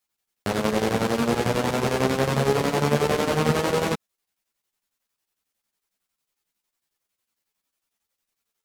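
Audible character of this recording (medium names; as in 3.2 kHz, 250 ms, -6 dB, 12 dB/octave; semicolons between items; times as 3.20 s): chopped level 11 Hz, depth 60%, duty 65%; a shimmering, thickened sound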